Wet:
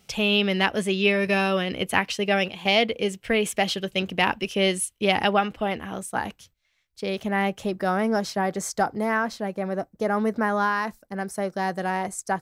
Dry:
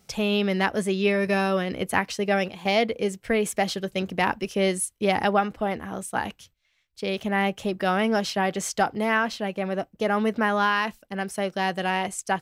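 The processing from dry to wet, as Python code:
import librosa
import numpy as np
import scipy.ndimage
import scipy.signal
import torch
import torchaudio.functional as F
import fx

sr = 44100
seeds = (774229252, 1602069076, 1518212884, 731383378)

y = fx.peak_eq(x, sr, hz=2900.0, db=fx.steps((0.0, 8.0), (5.99, -3.0), (7.8, -13.0)), octaves=0.67)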